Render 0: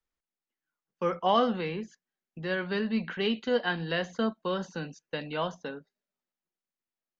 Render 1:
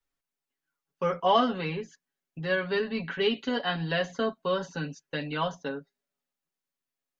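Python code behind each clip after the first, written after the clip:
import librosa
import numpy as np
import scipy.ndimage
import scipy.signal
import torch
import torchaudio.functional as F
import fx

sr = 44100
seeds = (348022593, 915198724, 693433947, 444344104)

y = x + 0.85 * np.pad(x, (int(7.2 * sr / 1000.0), 0))[:len(x)]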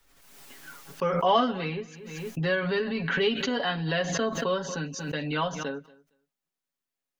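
y = fx.echo_feedback(x, sr, ms=231, feedback_pct=16, wet_db=-23.0)
y = fx.pre_swell(y, sr, db_per_s=39.0)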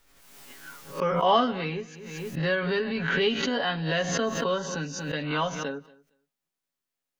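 y = fx.spec_swells(x, sr, rise_s=0.31)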